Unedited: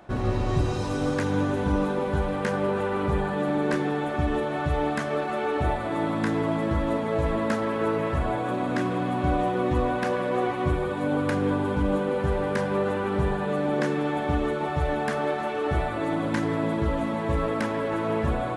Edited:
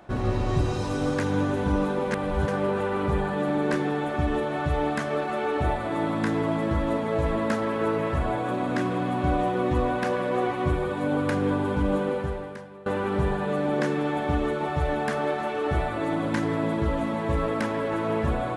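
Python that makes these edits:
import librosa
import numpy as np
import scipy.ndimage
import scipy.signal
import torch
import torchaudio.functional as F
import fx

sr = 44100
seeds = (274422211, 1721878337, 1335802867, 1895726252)

y = fx.edit(x, sr, fx.reverse_span(start_s=2.11, length_s=0.37),
    fx.fade_out_to(start_s=12.08, length_s=0.78, curve='qua', floor_db=-21.0), tone=tone)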